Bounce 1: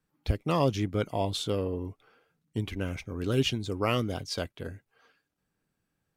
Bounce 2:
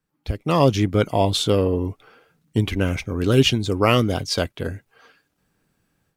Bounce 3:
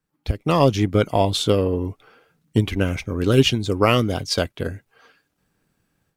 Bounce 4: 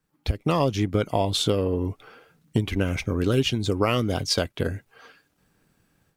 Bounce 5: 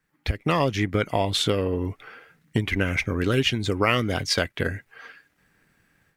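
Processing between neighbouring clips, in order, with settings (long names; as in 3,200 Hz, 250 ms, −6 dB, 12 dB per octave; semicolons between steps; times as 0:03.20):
automatic gain control gain up to 11.5 dB
transient designer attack +4 dB, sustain 0 dB; level −1 dB
downward compressor 3 to 1, threshold −25 dBFS, peak gain reduction 12 dB; level +3.5 dB
parametric band 1,900 Hz +12 dB 0.83 octaves; level −1 dB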